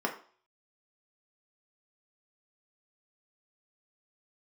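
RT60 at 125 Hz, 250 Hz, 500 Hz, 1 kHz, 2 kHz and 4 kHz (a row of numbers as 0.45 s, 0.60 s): 0.30 s, 0.40 s, 0.45 s, 0.45 s, 0.40 s, 0.45 s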